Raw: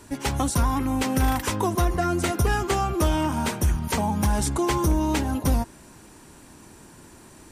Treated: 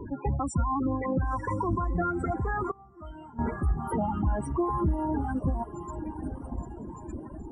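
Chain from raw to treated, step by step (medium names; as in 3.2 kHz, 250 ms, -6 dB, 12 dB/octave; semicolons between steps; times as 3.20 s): one-bit delta coder 64 kbps, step -31 dBFS; in parallel at -6 dB: saturation -27 dBFS, distortion -8 dB; on the sum: loudest bins only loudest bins 16; on a send: echo that smears into a reverb 1037 ms, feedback 41%, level -11 dB; on the sum: dynamic bell 1.3 kHz, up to +6 dB, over -45 dBFS, Q 3.6; 2.71–3.39 s: feedback comb 220 Hz, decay 0.8 s, mix 90%; reverb removal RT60 1 s; 0.86–2.02 s: rippled EQ curve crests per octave 1.2, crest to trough 10 dB; peak limiter -18 dBFS, peak gain reduction 7.5 dB; harmonic tremolo 3.5 Hz, depth 50%, crossover 700 Hz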